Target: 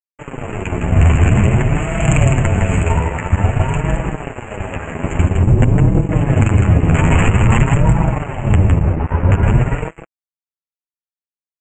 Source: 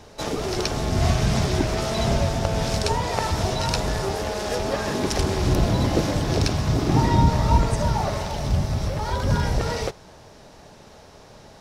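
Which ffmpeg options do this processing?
ffmpeg -i in.wav -filter_complex "[0:a]asettb=1/sr,asplit=3[link_01][link_02][link_03];[link_01]atrim=end=5.274[link_04];[link_02]atrim=start=5.27:end=6.12,asetpts=PTS-STARTPTS,afade=type=in:duration=0.004:curve=qsin,afade=type=out:start_time=0.846:duration=0.004:curve=qsin,equalizer=frequency=1800:width=0.35:gain=-14[link_05];[link_03]atrim=start=6.116[link_06];[link_04][link_05]acrossfade=duration=0.004:curve1=hsin:curve2=qsin[link_07];[link_07][link_06]acrossfade=duration=0.004:curve1=qsin:curve2=hsin,asettb=1/sr,asplit=3[link_08][link_09][link_10];[link_08]atrim=end=8.784[link_11];[link_09]atrim=start=8.78:end=9.43,asetpts=PTS-STARTPTS,afade=type=in:duration=0.004:curve=qsin,afade=type=out:start_time=0.646:duration=0.004:curve=qsin,adynamicsmooth=sensitivity=2:basefreq=550[link_12];[link_10]atrim=start=9.426[link_13];[link_11][link_12]acrossfade=duration=0.004:curve1=hsin:curve2=qsin[link_14];[link_14][link_13]acrossfade=duration=0.004:curve1=qsin:curve2=hsin,aeval=exprs='(mod(3.76*val(0)+1,2)-1)/3.76':channel_layout=same,asettb=1/sr,asplit=3[link_15][link_16][link_17];[link_15]atrim=end=1.754[link_18];[link_16]atrim=start=1.75:end=2.82,asetpts=PTS-STARTPTS,afade=type=in:duration=0.004:curve=qsin,afade=type=out:start_time=1.066:duration=0.004:curve=qsin,highshelf=frequency=3300:gain=8.5[link_19];[link_17]atrim=start=2.816[link_20];[link_18][link_19]acrossfade=duration=0.004:curve1=hsin:curve2=qsin[link_21];[link_21][link_20]acrossfade=duration=0.004:curve1=qsin:curve2=hsin,aecho=1:1:159:0.596,acrossover=split=200|3000[link_22][link_23][link_24];[link_23]acompressor=threshold=-43dB:ratio=2[link_25];[link_22][link_25][link_24]amix=inputs=3:normalize=0,aeval=exprs='sgn(val(0))*max(abs(val(0))-0.0355,0)':channel_layout=same,flanger=delay=6.1:depth=6.1:regen=2:speed=0.5:shape=sinusoidal,asuperstop=centerf=4700:order=12:qfactor=0.93,aresample=16000,aresample=44100,alimiter=level_in=19.5dB:limit=-1dB:release=50:level=0:latency=1,volume=-1dB" out.wav

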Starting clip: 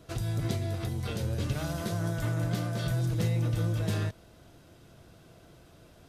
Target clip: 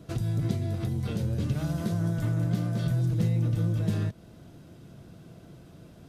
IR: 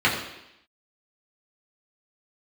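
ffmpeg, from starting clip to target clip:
-filter_complex "[0:a]equalizer=frequency=180:width_type=o:width=2:gain=11,asplit=2[link_01][link_02];[link_02]acompressor=threshold=-29dB:ratio=6,volume=3dB[link_03];[link_01][link_03]amix=inputs=2:normalize=0,volume=-8.5dB"

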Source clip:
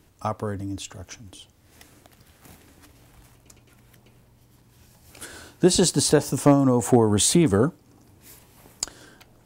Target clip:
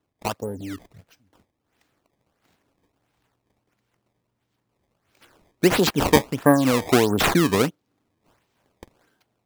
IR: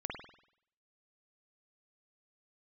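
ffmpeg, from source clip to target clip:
-filter_complex "[0:a]highpass=frequency=200:poles=1,afwtdn=0.0316,asettb=1/sr,asplit=3[link_01][link_02][link_03];[link_01]atrim=end=5.884[link_04];[link_02]atrim=start=5.88:end=6.57,asetpts=PTS-STARTPTS,afade=type=in:duration=0.004:curve=qsin,afade=type=out:start_time=0.686:duration=0.004:curve=qsin,equalizer=frequency=1800:width_type=o:width=0.54:gain=14.5[link_05];[link_03]atrim=start=6.566[link_06];[link_04][link_05]acrossfade=duration=0.004:curve1=hsin:curve2=qsin[link_07];[link_07][link_06]acrossfade=duration=0.004:curve1=qsin:curve2=hsin,acrusher=samples=18:mix=1:aa=0.000001:lfo=1:lforange=28.8:lforate=1.5,volume=1.5dB"

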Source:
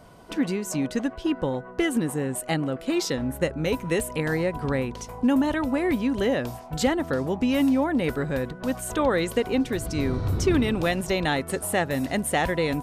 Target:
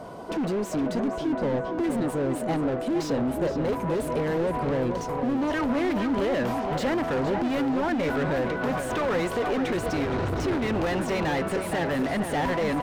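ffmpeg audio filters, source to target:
ffmpeg -i in.wav -filter_complex "[0:a]asetnsamples=nb_out_samples=441:pad=0,asendcmd='5.5 equalizer g 2.5',equalizer=frequency=2000:width=0.59:gain=-9,asoftclip=type=hard:threshold=-25.5dB,asplit=2[link_01][link_02];[link_02]highpass=frequency=720:poles=1,volume=26dB,asoftclip=type=tanh:threshold=-19dB[link_03];[link_01][link_03]amix=inputs=2:normalize=0,lowpass=frequency=1100:poles=1,volume=-6dB,asplit=2[link_04][link_05];[link_05]adelay=466,lowpass=frequency=4100:poles=1,volume=-7dB,asplit=2[link_06][link_07];[link_07]adelay=466,lowpass=frequency=4100:poles=1,volume=0.36,asplit=2[link_08][link_09];[link_09]adelay=466,lowpass=frequency=4100:poles=1,volume=0.36,asplit=2[link_10][link_11];[link_11]adelay=466,lowpass=frequency=4100:poles=1,volume=0.36[link_12];[link_04][link_06][link_08][link_10][link_12]amix=inputs=5:normalize=0" out.wav

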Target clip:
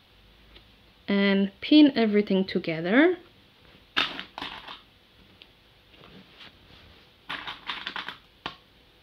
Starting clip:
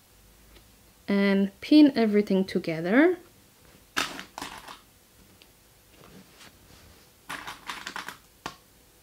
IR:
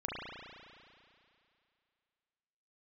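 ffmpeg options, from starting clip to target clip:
-af "highshelf=frequency=5100:width_type=q:width=3:gain=-13.5"

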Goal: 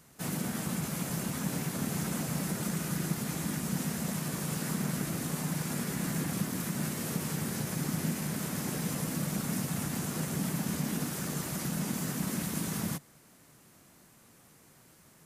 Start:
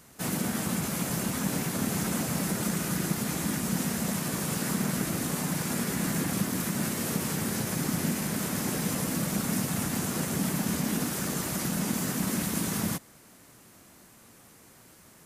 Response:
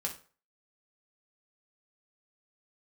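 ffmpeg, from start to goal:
-af "equalizer=frequency=150:width_type=o:width=0.28:gain=6.5,volume=-5dB"

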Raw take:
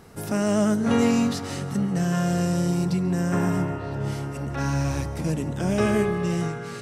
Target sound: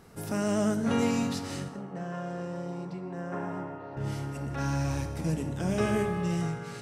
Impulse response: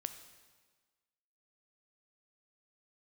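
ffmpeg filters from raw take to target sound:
-filter_complex "[0:a]asettb=1/sr,asplit=3[link_01][link_02][link_03];[link_01]atrim=end=1.684[link_04];[link_02]atrim=start=1.68:end=3.97,asetpts=PTS-STARTPTS,afade=type=in:duration=0.004:curve=qsin,afade=type=out:start_time=2.286:duration=0.004:curve=qsin,bandpass=frequency=750:width_type=q:width=0.83:csg=0[link_05];[link_03]atrim=start=3.966[link_06];[link_04][link_05]acrossfade=duration=0.004:curve1=hsin:curve2=qsin[link_07];[link_07][link_06]acrossfade=duration=0.004:curve1=qsin:curve2=hsin[link_08];[1:a]atrim=start_sample=2205,afade=type=out:start_time=0.36:duration=0.01,atrim=end_sample=16317,asetrate=61740,aresample=44100[link_09];[link_08][link_09]afir=irnorm=-1:irlink=0"

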